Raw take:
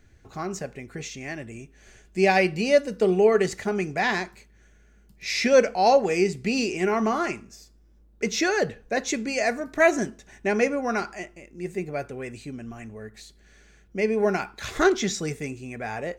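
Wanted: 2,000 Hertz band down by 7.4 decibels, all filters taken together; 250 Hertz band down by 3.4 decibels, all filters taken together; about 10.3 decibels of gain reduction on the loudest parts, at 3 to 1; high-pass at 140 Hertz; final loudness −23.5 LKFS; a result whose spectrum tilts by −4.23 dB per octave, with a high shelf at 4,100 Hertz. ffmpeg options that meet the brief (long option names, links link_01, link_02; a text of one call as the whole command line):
ffmpeg -i in.wav -af "highpass=140,equalizer=frequency=250:width_type=o:gain=-4,equalizer=frequency=2000:width_type=o:gain=-8.5,highshelf=frequency=4100:gain=-4,acompressor=threshold=-29dB:ratio=3,volume=10dB" out.wav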